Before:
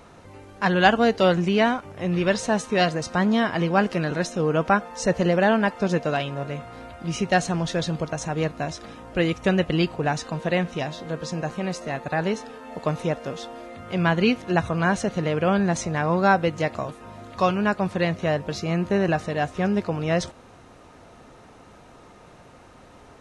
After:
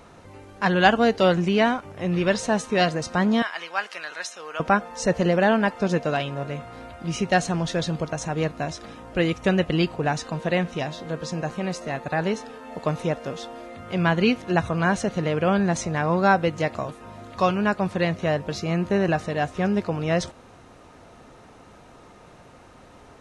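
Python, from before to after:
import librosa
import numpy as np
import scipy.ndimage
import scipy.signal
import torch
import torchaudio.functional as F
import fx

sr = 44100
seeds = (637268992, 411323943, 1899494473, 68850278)

y = fx.highpass(x, sr, hz=1200.0, slope=12, at=(3.42, 4.6))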